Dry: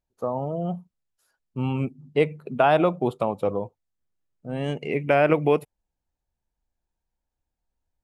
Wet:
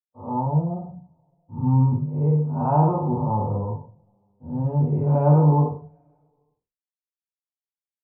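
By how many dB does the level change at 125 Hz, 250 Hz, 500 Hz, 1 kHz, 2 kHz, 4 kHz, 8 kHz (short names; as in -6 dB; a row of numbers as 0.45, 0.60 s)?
+12.0 dB, +4.5 dB, -5.0 dB, +1.0 dB, under -20 dB, under -40 dB, n/a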